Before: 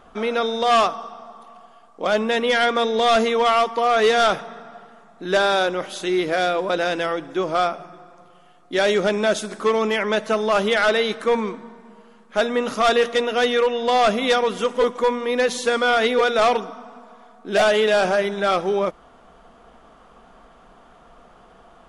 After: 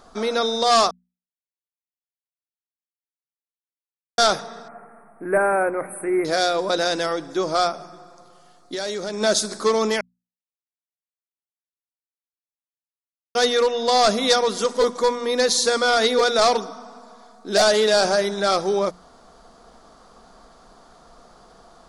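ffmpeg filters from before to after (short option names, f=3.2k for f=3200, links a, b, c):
-filter_complex "[0:a]asettb=1/sr,asplit=3[a][b][c];[a]atrim=end=4.684[d];[b]atrim=start=4.68:end=6.25,asetpts=PTS-STARTPTS,afade=t=in:d=0.004:c=qsin,afade=t=out:st=1.566:d=0.004:c=qsin,asuperstop=centerf=4700:order=20:qfactor=0.77[e];[c]atrim=start=6.246[f];[d][e]acrossfade=d=0.004:c1=hsin:c2=qsin[g];[g][f]acrossfade=d=0.004:c1=qsin:c2=hsin,asplit=3[h][i][j];[h]afade=t=out:st=7.71:d=0.02[k];[i]acompressor=threshold=-25dB:ratio=6:attack=3.2:release=140:knee=1:detection=peak,afade=t=in:st=7.71:d=0.02,afade=t=out:st=9.2:d=0.02[l];[j]afade=t=in:st=9.2:d=0.02[m];[k][l][m]amix=inputs=3:normalize=0,asplit=5[n][o][p][q][r];[n]atrim=end=0.91,asetpts=PTS-STARTPTS,afade=t=out:st=0.906:d=0.004:c=hsin[s];[o]atrim=start=0.91:end=4.18,asetpts=PTS-STARTPTS,volume=0[t];[p]atrim=start=4.18:end=10.01,asetpts=PTS-STARTPTS,afade=t=in:d=0.004:c=hsin,afade=t=out:st=5.826:d=0.004:c=hsin[u];[q]atrim=start=10.01:end=13.35,asetpts=PTS-STARTPTS,volume=0[v];[r]atrim=start=13.35,asetpts=PTS-STARTPTS,afade=t=in:d=0.004:c=hsin[w];[s][t][u][v][w]concat=n=5:v=0:a=1,highshelf=f=3.6k:t=q:w=3:g=7,bandreject=f=60:t=h:w=6,bandreject=f=120:t=h:w=6,bandreject=f=180:t=h:w=6,bandreject=f=240:t=h:w=6"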